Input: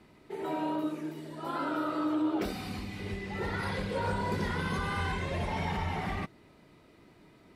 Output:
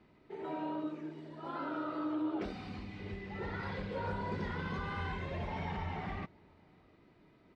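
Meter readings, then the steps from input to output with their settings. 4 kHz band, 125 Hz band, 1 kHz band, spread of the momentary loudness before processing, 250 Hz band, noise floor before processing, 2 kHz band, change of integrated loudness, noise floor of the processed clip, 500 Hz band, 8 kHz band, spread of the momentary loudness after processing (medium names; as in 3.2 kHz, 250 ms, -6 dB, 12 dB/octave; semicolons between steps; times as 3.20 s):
-9.0 dB, -5.5 dB, -6.0 dB, 8 LU, -5.5 dB, -59 dBFS, -7.0 dB, -6.0 dB, -64 dBFS, -6.0 dB, under -15 dB, 8 LU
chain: distance through air 150 m; echo from a far wall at 120 m, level -28 dB; trim -5.5 dB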